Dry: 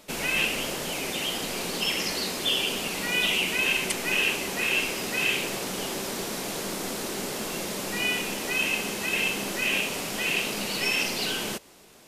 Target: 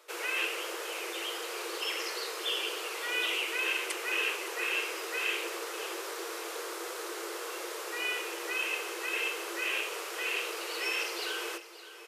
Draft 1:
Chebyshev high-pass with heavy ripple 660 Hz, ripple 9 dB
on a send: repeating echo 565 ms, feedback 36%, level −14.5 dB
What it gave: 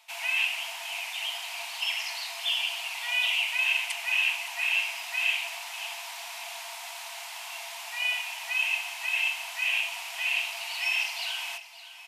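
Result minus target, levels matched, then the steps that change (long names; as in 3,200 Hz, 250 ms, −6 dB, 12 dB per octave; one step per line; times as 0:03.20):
500 Hz band −15.5 dB
change: Chebyshev high-pass with heavy ripple 330 Hz, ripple 9 dB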